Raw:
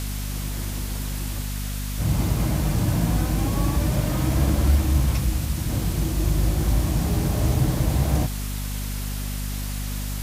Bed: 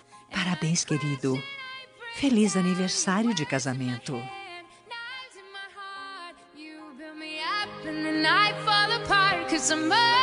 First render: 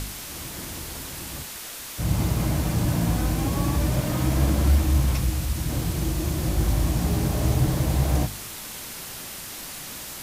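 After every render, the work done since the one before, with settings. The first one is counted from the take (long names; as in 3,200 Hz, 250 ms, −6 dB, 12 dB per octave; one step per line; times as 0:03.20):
hum removal 50 Hz, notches 5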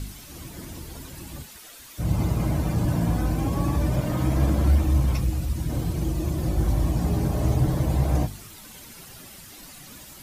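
broadband denoise 11 dB, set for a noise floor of −37 dBFS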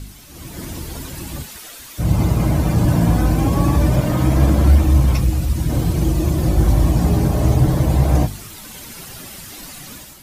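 automatic gain control gain up to 9 dB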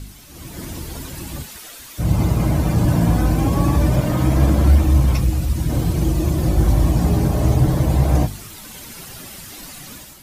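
level −1 dB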